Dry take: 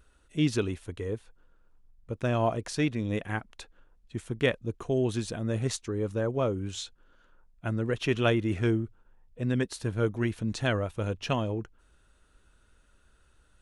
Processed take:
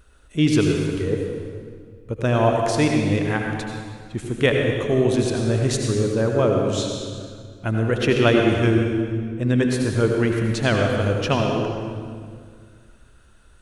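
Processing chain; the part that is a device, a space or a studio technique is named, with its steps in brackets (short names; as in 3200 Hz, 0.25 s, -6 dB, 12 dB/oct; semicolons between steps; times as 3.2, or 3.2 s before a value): stairwell (reverb RT60 2.0 s, pre-delay 72 ms, DRR 1 dB); gain +7 dB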